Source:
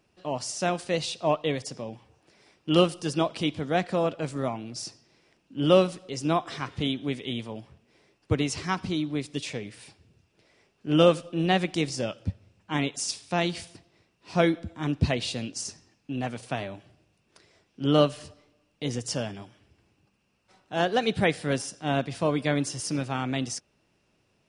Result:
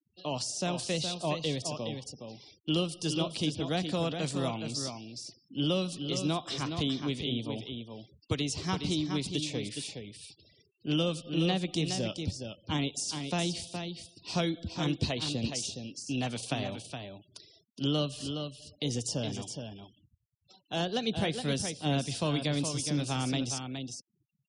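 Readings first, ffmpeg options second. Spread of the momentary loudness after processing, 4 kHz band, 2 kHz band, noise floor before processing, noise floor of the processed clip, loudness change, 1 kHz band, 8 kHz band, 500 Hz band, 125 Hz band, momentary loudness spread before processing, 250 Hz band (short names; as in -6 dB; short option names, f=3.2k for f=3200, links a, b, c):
12 LU, 0.0 dB, -7.0 dB, -70 dBFS, -76 dBFS, -5.0 dB, -7.5 dB, -0.5 dB, -8.5 dB, -2.0 dB, 15 LU, -4.0 dB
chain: -filter_complex "[0:a]highshelf=f=2.6k:t=q:w=1.5:g=8.5,acrossover=split=250|1000[a][b][c];[a]acompressor=threshold=-31dB:ratio=4[d];[b]acompressor=threshold=-35dB:ratio=4[e];[c]acompressor=threshold=-36dB:ratio=4[f];[d][e][f]amix=inputs=3:normalize=0,asplit=2[g][h];[h]aecho=0:1:417:0.447[i];[g][i]amix=inputs=2:normalize=0,afftfilt=real='re*gte(hypot(re,im),0.00251)':imag='im*gte(hypot(re,im),0.00251)':win_size=1024:overlap=0.75"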